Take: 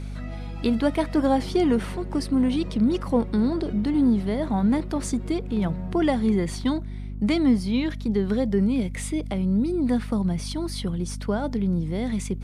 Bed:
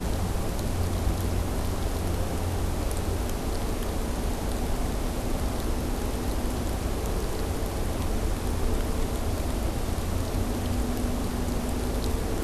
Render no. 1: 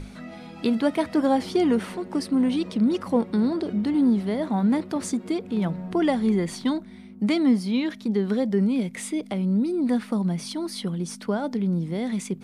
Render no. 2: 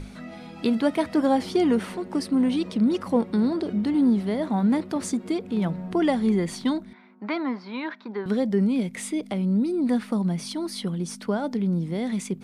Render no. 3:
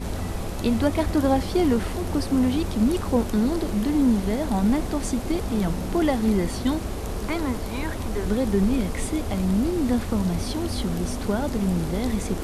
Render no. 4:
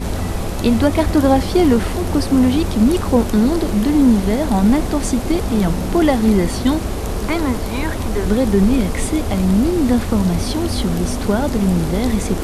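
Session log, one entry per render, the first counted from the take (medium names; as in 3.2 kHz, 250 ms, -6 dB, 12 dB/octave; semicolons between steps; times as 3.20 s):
hum notches 50/100/150 Hz
6.93–8.26 s: cabinet simulation 430–3700 Hz, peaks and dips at 470 Hz -4 dB, 1 kHz +10 dB, 1.5 kHz +7 dB, 3.1 kHz -9 dB
add bed -1.5 dB
trim +7.5 dB; peak limiter -3 dBFS, peak gain reduction 1.5 dB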